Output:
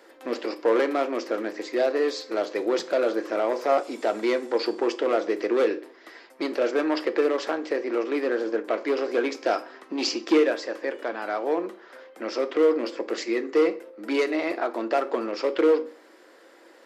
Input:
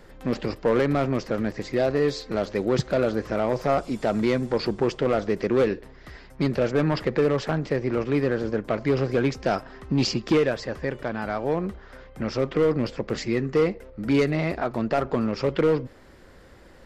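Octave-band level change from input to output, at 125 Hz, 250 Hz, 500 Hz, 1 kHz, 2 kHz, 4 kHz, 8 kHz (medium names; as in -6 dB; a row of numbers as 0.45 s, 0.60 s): under -30 dB, -3.0 dB, +0.5 dB, +0.5 dB, +0.5 dB, +0.5 dB, no reading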